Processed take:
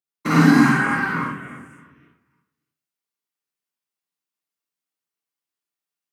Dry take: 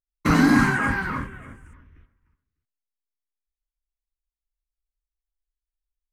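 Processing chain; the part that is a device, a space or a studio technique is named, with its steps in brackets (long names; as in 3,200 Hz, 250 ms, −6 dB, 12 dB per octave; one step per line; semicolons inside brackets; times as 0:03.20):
far laptop microphone (convolution reverb RT60 0.45 s, pre-delay 42 ms, DRR −4.5 dB; high-pass filter 140 Hz 24 dB per octave; automatic gain control gain up to 3 dB)
level −1 dB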